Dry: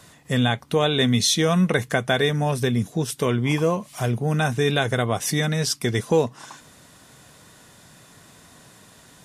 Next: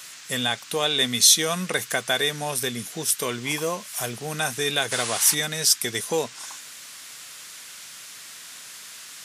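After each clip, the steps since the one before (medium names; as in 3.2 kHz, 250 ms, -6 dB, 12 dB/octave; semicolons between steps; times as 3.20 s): RIAA curve recording; painted sound noise, 4.91–5.35 s, 810–11000 Hz -27 dBFS; band noise 1.2–8 kHz -41 dBFS; trim -3 dB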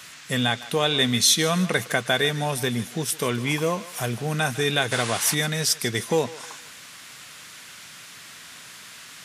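tone controls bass +7 dB, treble -7 dB; thinning echo 154 ms, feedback 43%, high-pass 480 Hz, level -16 dB; trim +2 dB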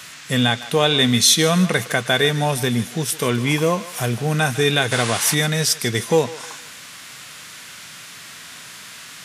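harmonic-percussive split percussive -4 dB; trim +6.5 dB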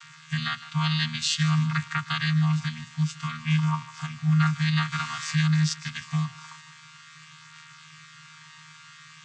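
vocoder on a held chord bare fifth, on D#3; elliptic band-stop 140–1100 Hz, stop band 50 dB; trim +2 dB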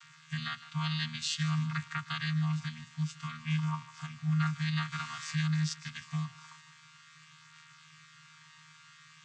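band-stop 830 Hz, Q 12; trim -8 dB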